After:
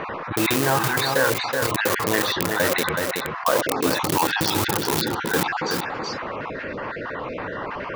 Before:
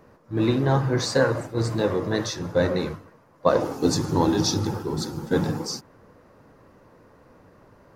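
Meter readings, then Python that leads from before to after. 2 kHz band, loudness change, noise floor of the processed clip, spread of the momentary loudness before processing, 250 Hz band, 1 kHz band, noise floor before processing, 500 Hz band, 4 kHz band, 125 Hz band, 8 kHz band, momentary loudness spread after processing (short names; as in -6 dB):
+11.0 dB, +1.5 dB, -32 dBFS, 9 LU, -2.0 dB, +7.0 dB, -55 dBFS, 0.0 dB, +6.0 dB, -4.5 dB, +5.5 dB, 10 LU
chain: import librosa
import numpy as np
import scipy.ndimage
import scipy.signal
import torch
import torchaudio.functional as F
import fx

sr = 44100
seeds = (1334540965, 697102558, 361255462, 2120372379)

p1 = fx.spec_dropout(x, sr, seeds[0], share_pct=29)
p2 = scipy.signal.sosfilt(scipy.signal.butter(4, 2800.0, 'lowpass', fs=sr, output='sos'), p1)
p3 = fx.low_shelf(p2, sr, hz=65.0, db=8.0)
p4 = np.where(np.abs(p3) >= 10.0 ** (-22.0 / 20.0), p3, 0.0)
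p5 = p3 + (p4 * librosa.db_to_amplitude(-6.0))
p6 = fx.tilt_eq(p5, sr, slope=4.5)
p7 = p6 + fx.echo_single(p6, sr, ms=375, db=-14.0, dry=0)
p8 = fx.env_flatten(p7, sr, amount_pct=70)
y = p8 * librosa.db_to_amplitude(-2.0)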